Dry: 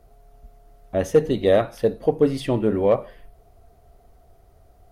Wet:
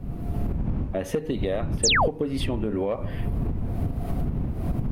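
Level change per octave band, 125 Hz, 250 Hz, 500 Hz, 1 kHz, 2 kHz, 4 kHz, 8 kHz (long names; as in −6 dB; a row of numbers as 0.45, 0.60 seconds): +4.5 dB, −2.5 dB, −8.5 dB, +1.5 dB, +7.5 dB, +10.5 dB, can't be measured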